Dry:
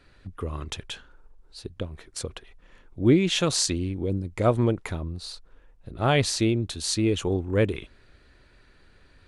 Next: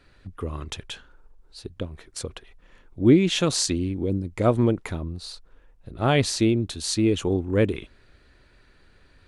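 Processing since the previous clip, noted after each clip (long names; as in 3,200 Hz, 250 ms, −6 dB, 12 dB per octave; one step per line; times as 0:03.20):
dynamic equaliser 260 Hz, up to +4 dB, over −36 dBFS, Q 1.2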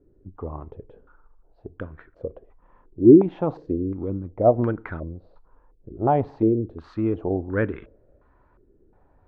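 high-frequency loss of the air 110 metres
feedback delay network reverb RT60 0.52 s, low-frequency decay 1×, high-frequency decay 0.8×, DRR 18.5 dB
low-pass on a step sequencer 2.8 Hz 380–1,500 Hz
level −3.5 dB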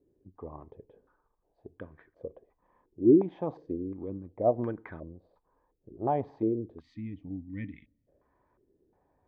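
gain on a spectral selection 0:06.81–0:08.08, 310–1,800 Hz −25 dB
notch comb filter 1,400 Hz
level −8 dB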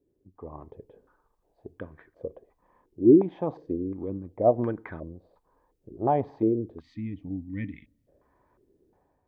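automatic gain control gain up to 7.5 dB
level −3 dB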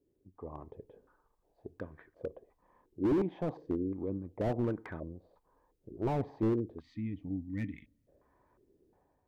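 slew-rate limiting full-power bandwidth 24 Hz
level −3 dB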